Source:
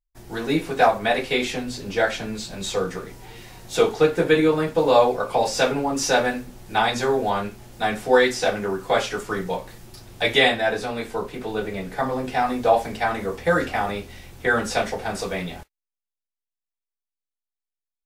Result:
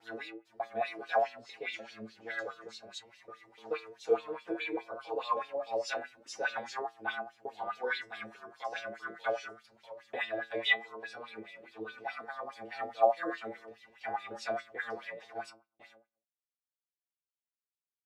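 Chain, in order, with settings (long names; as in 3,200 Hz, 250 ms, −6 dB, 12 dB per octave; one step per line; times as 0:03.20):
slices reordered back to front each 298 ms, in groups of 2
stiff-string resonator 110 Hz, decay 0.45 s, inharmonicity 0.002
auto-filter band-pass sine 4.8 Hz 450–4,000 Hz
level +5 dB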